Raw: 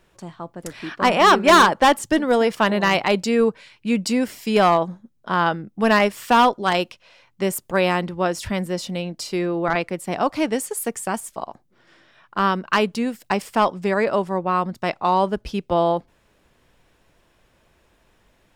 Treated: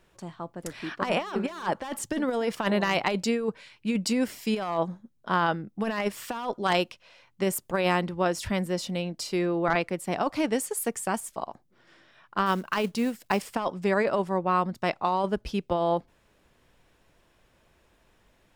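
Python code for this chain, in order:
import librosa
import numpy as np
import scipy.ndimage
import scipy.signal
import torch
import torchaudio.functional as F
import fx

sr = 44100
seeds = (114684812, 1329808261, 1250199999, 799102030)

y = fx.over_compress(x, sr, threshold_db=-19.0, ratio=-0.5)
y = fx.quant_companded(y, sr, bits=6, at=(12.46, 13.55))
y = F.gain(torch.from_numpy(y), -5.5).numpy()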